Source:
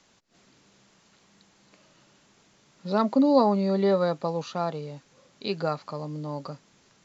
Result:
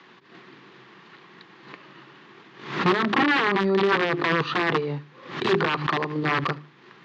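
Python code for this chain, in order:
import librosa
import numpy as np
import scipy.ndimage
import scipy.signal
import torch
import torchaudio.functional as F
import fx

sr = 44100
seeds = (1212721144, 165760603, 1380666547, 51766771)

p1 = fx.low_shelf(x, sr, hz=300.0, db=-3.5)
p2 = fx.hum_notches(p1, sr, base_hz=50, count=8)
p3 = fx.over_compress(p2, sr, threshold_db=-32.0, ratio=-0.5)
p4 = p2 + F.gain(torch.from_numpy(p3), 3.0).numpy()
p5 = fx.transient(p4, sr, attack_db=5, sustain_db=-5)
p6 = (np.mod(10.0 ** (16.5 / 20.0) * p5 + 1.0, 2.0) - 1.0) / 10.0 ** (16.5 / 20.0)
p7 = fx.cabinet(p6, sr, low_hz=130.0, low_slope=24, high_hz=3600.0, hz=(140.0, 360.0, 600.0, 1100.0, 1800.0), db=(5, 10, -9, 6, 6))
p8 = p7 + fx.echo_feedback(p7, sr, ms=75, feedback_pct=36, wet_db=-23, dry=0)
y = fx.pre_swell(p8, sr, db_per_s=96.0)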